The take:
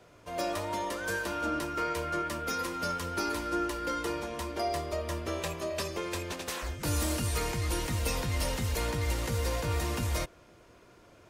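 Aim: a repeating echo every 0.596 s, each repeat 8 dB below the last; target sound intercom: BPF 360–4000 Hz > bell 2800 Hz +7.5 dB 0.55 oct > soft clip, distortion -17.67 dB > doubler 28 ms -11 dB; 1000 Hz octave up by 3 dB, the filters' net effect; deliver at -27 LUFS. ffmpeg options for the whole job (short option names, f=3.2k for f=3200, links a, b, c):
-filter_complex "[0:a]highpass=360,lowpass=4k,equalizer=f=1k:t=o:g=4,equalizer=f=2.8k:t=o:w=0.55:g=7.5,aecho=1:1:596|1192|1788|2384|2980:0.398|0.159|0.0637|0.0255|0.0102,asoftclip=threshold=-26dB,asplit=2[a][b];[b]adelay=28,volume=-11dB[c];[a][c]amix=inputs=2:normalize=0,volume=6.5dB"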